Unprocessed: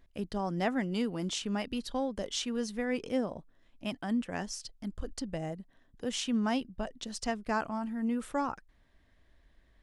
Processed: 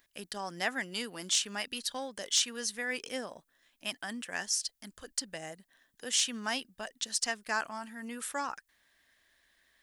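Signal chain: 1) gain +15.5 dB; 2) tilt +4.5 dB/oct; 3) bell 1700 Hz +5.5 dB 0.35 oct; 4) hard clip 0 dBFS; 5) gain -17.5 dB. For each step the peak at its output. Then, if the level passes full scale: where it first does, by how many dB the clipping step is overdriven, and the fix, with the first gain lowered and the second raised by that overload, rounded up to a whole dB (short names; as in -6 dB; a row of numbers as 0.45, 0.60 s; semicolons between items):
-1.5, +6.5, +6.5, 0.0, -17.5 dBFS; step 2, 6.5 dB; step 1 +8.5 dB, step 5 -10.5 dB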